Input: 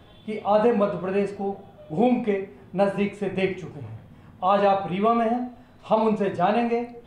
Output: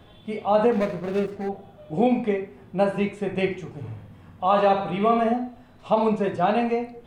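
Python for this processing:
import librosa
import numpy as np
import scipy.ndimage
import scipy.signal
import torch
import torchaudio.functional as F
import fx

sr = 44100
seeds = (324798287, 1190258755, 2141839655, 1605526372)

y = fx.median_filter(x, sr, points=41, at=(0.72, 1.49))
y = fx.room_flutter(y, sr, wall_m=11.3, rt60_s=0.54, at=(3.76, 5.32), fade=0.02)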